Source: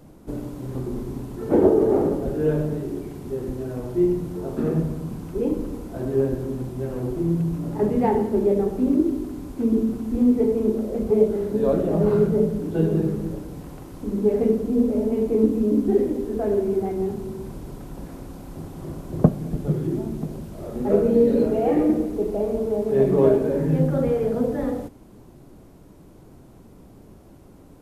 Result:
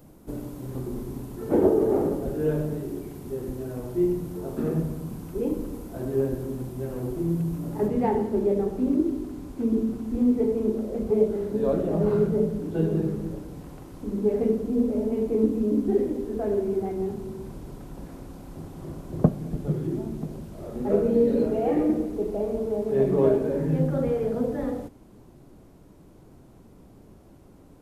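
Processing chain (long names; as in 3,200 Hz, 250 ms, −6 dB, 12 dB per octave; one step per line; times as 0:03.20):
high-shelf EQ 11,000 Hz +11.5 dB, from 0:07.88 −2.5 dB
level −3.5 dB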